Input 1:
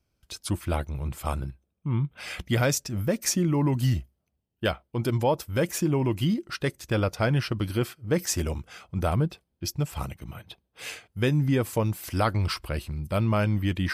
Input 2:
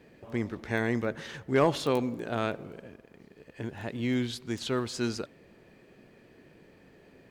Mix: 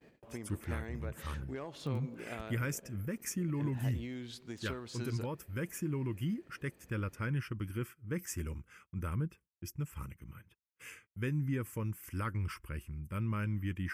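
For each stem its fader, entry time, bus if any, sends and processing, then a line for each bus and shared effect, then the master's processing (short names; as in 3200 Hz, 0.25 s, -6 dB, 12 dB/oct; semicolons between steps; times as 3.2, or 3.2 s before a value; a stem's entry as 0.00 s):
-9.5 dB, 0.00 s, no send, fixed phaser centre 1700 Hz, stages 4
-0.5 dB, 0.00 s, no send, compressor 16:1, threshold -30 dBFS, peak gain reduction 12.5 dB; auto duck -8 dB, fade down 0.25 s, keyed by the first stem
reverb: off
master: gate -59 dBFS, range -27 dB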